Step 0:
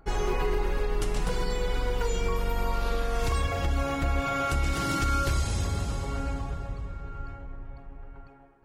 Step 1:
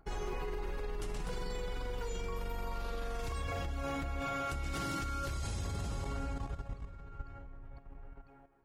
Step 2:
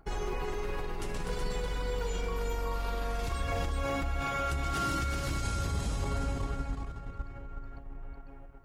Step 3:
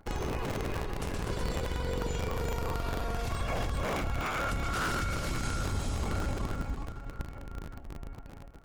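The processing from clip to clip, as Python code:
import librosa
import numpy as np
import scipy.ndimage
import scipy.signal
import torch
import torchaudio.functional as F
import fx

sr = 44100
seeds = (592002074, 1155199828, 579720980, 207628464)

y1 = fx.level_steps(x, sr, step_db=11)
y1 = y1 * 10.0 ** (-3.5 / 20.0)
y2 = y1 + 10.0 ** (-4.5 / 20.0) * np.pad(y1, (int(371 * sr / 1000.0), 0))[:len(y1)]
y2 = y2 * 10.0 ** (4.0 / 20.0)
y3 = fx.cycle_switch(y2, sr, every=3, mode='inverted')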